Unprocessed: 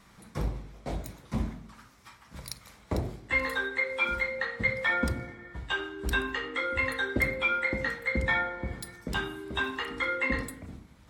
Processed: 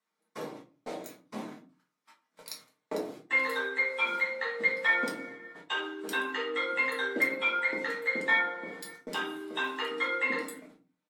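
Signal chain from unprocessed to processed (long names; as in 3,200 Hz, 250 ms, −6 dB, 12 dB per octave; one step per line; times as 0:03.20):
high-pass filter 270 Hz 24 dB per octave
noise gate −48 dBFS, range −25 dB
comb filter 6.6 ms, depth 36%
convolution reverb RT60 0.35 s, pre-delay 5 ms, DRR 0 dB
level −3.5 dB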